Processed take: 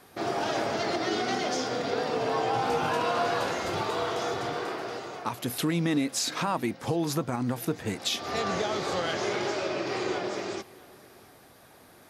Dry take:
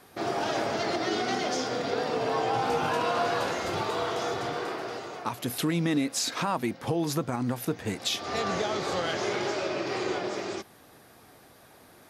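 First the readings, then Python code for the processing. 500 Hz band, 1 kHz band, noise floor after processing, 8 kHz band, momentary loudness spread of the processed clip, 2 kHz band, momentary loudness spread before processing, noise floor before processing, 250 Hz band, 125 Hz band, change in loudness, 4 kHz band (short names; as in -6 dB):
0.0 dB, 0.0 dB, -54 dBFS, 0.0 dB, 6 LU, 0.0 dB, 6 LU, -55 dBFS, 0.0 dB, 0.0 dB, 0.0 dB, 0.0 dB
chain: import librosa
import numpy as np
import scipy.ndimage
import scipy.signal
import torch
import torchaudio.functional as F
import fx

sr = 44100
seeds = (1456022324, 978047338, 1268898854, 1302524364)

y = x + 10.0 ** (-23.0 / 20.0) * np.pad(x, (int(664 * sr / 1000.0), 0))[:len(x)]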